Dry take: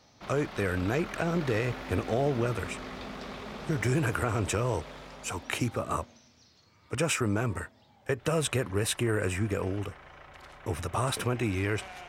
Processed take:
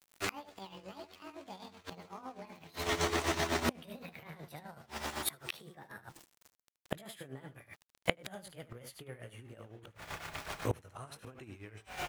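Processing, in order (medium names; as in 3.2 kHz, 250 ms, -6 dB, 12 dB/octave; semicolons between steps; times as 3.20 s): pitch bend over the whole clip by +12 st ending unshifted; small samples zeroed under -52 dBFS; delay 75 ms -9 dB; tremolo 7.9 Hz, depth 74%; inverted gate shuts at -30 dBFS, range -28 dB; trim +11.5 dB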